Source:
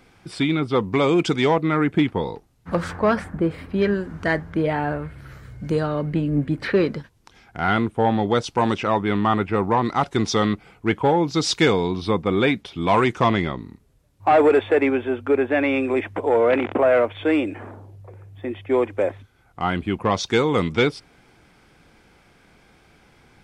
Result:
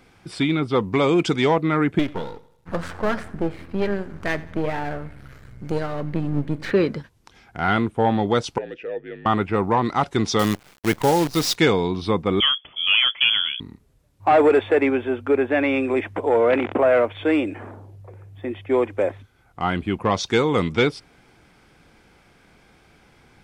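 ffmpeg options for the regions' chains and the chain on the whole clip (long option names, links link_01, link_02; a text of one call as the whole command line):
ffmpeg -i in.wav -filter_complex "[0:a]asettb=1/sr,asplit=3[link_01][link_02][link_03];[link_01]atrim=end=1.994[link_04];[link_02]atrim=start=1.99:end=6.71,asetpts=PTS-STARTPTS,afade=type=in:duration=0.004:curve=qsin,afade=type=out:start_time=4.716:duration=0.004:curve=qsin,aeval=exprs='if(lt(val(0),0),0.251*val(0),val(0))':channel_layout=same,aecho=1:1:88|176|264|352:0.1|0.048|0.023|0.0111,atrim=end_sample=208152[link_05];[link_03]atrim=start=6.706[link_06];[link_04][link_05]acrossfade=duration=0.004:curve1=hsin:curve2=qsin[link_07];[link_07][link_06]acrossfade=duration=0.004:curve1=qsin:curve2=hsin,asettb=1/sr,asplit=3[link_08][link_09][link_10];[link_08]atrim=end=8.584[link_11];[link_09]atrim=start=8.58:end=9.26,asetpts=PTS-STARTPTS,afade=type=in:duration=0.004:curve=qsin,afade=type=out:start_time=0.676:duration=0.004:curve=qsin,asplit=3[link_12][link_13][link_14];[link_12]bandpass=frequency=530:width_type=q:width=8,volume=0dB[link_15];[link_13]bandpass=frequency=1840:width_type=q:width=8,volume=-6dB[link_16];[link_14]bandpass=frequency=2480:width_type=q:width=8,volume=-9dB[link_17];[link_15][link_16][link_17]amix=inputs=3:normalize=0,afreqshift=-53[link_18];[link_10]atrim=start=9.256[link_19];[link_11][link_18]acrossfade=duration=0.004:curve1=hsin:curve2=qsin[link_20];[link_20][link_19]acrossfade=duration=0.004:curve1=qsin:curve2=hsin,asettb=1/sr,asplit=3[link_21][link_22][link_23];[link_21]atrim=end=10.394[link_24];[link_22]atrim=start=10.39:end=11.56,asetpts=PTS-STARTPTS,afade=type=in:duration=0.004:curve=qsin,afade=type=out:start_time=1.166:duration=0.004:curve=qsin,highpass=56,acrusher=bits=5:dc=4:mix=0:aa=0.000001[link_25];[link_23]atrim=start=11.556[link_26];[link_24][link_25]acrossfade=duration=0.004:curve1=hsin:curve2=qsin[link_27];[link_27][link_26]acrossfade=duration=0.004:curve1=qsin:curve2=hsin,asettb=1/sr,asplit=3[link_28][link_29][link_30];[link_28]atrim=end=12.404[link_31];[link_29]atrim=start=12.4:end=13.6,asetpts=PTS-STARTPTS,afade=type=in:duration=0.004:curve=qsin,afade=type=out:start_time=1.196:duration=0.004:curve=qsin,highshelf=frequency=2400:gain=-8.5,lowpass=frequency=3000:width_type=q:width=0.5098,lowpass=frequency=3000:width_type=q:width=0.6013,lowpass=frequency=3000:width_type=q:width=0.9,lowpass=frequency=3000:width_type=q:width=2.563,afreqshift=-3500[link_32];[link_30]atrim=start=13.596[link_33];[link_31][link_32]acrossfade=duration=0.004:curve1=hsin:curve2=qsin[link_34];[link_34][link_33]acrossfade=duration=0.004:curve1=qsin:curve2=hsin" out.wav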